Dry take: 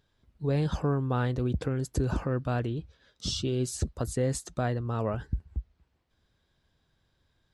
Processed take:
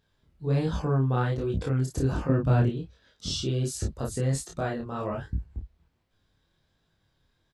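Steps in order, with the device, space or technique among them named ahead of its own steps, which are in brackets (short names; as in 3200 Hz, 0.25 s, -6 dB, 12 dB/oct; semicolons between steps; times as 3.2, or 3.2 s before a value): double-tracked vocal (doubler 30 ms -2.5 dB; chorus 1.3 Hz, delay 18.5 ms, depth 6.1 ms); 2.29–2.7 low shelf 330 Hz +11.5 dB; gain +2 dB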